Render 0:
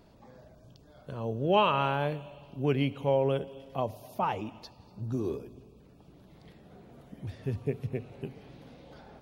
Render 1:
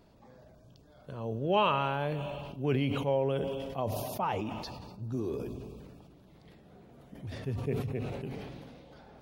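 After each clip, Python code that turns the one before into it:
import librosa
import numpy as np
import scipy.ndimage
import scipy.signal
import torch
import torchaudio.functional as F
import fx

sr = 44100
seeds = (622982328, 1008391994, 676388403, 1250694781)

y = fx.sustainer(x, sr, db_per_s=28.0)
y = y * 10.0 ** (-3.0 / 20.0)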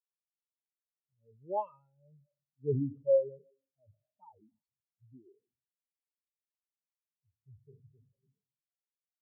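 y = fx.high_shelf(x, sr, hz=5000.0, db=6.0)
y = fx.rotary(y, sr, hz=0.6)
y = fx.spectral_expand(y, sr, expansion=4.0)
y = y * 10.0 ** (-2.0 / 20.0)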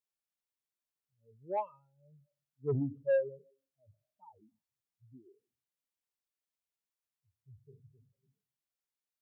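y = 10.0 ** (-22.5 / 20.0) * np.tanh(x / 10.0 ** (-22.5 / 20.0))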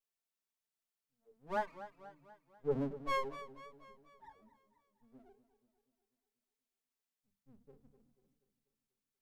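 y = fx.lower_of_two(x, sr, delay_ms=4.5)
y = fx.hum_notches(y, sr, base_hz=50, count=5)
y = fx.echo_warbled(y, sr, ms=243, feedback_pct=53, rate_hz=2.8, cents=98, wet_db=-14)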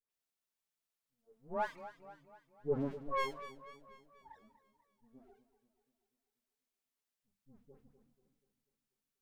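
y = fx.dispersion(x, sr, late='highs', ms=104.0, hz=1400.0)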